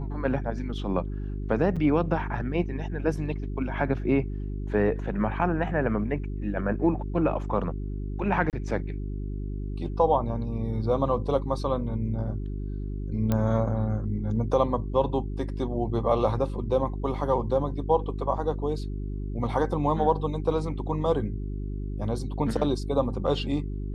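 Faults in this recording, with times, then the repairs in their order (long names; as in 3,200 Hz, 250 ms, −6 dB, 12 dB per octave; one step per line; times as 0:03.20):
mains hum 50 Hz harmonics 8 −32 dBFS
0:01.76–0:01.77: drop-out 6 ms
0:08.50–0:08.53: drop-out 28 ms
0:13.32: click −13 dBFS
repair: click removal
hum removal 50 Hz, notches 8
repair the gap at 0:01.76, 6 ms
repair the gap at 0:08.50, 28 ms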